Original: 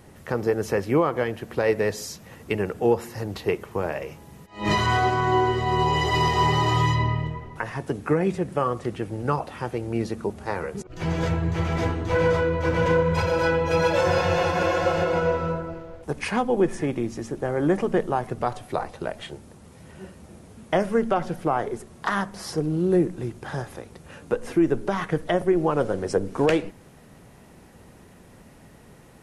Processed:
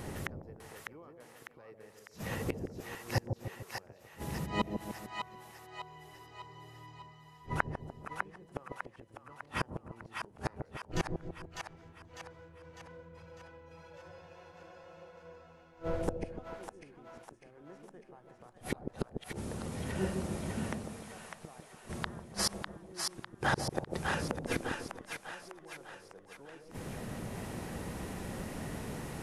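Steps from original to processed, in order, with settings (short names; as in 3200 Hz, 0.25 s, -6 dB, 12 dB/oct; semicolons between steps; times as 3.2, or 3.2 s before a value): flipped gate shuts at -25 dBFS, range -40 dB; split-band echo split 700 Hz, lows 0.148 s, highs 0.601 s, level -4 dB; gain +7 dB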